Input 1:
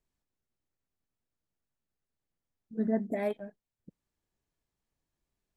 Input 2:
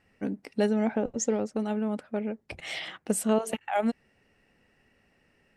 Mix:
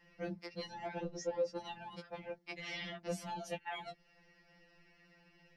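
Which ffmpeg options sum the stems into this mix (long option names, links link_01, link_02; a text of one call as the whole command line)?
ffmpeg -i stem1.wav -i stem2.wav -filter_complex "[0:a]deesser=0.9,volume=-7.5dB[link_01];[1:a]highshelf=frequency=6600:width_type=q:width=3:gain=-9,volume=2.5dB[link_02];[link_01][link_02]amix=inputs=2:normalize=0,acrossover=split=110|480|2700[link_03][link_04][link_05][link_06];[link_03]acompressor=threshold=-51dB:ratio=4[link_07];[link_04]acompressor=threshold=-25dB:ratio=4[link_08];[link_05]acompressor=threshold=-42dB:ratio=4[link_09];[link_06]acompressor=threshold=-49dB:ratio=4[link_10];[link_07][link_08][link_09][link_10]amix=inputs=4:normalize=0,afftfilt=real='re*2.83*eq(mod(b,8),0)':imag='im*2.83*eq(mod(b,8),0)':win_size=2048:overlap=0.75" out.wav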